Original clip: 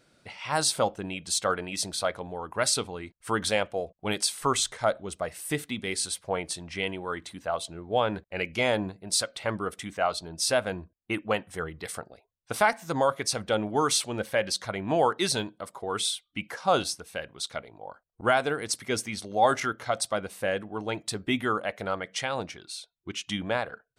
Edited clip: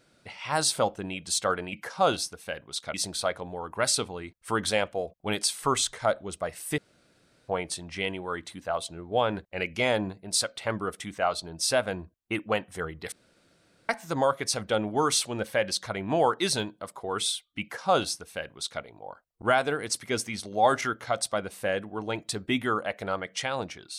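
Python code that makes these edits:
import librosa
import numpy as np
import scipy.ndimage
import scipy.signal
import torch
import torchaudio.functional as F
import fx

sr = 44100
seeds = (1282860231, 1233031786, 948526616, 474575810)

y = fx.edit(x, sr, fx.room_tone_fill(start_s=5.57, length_s=0.7),
    fx.room_tone_fill(start_s=11.91, length_s=0.77),
    fx.duplicate(start_s=16.4, length_s=1.21, to_s=1.73), tone=tone)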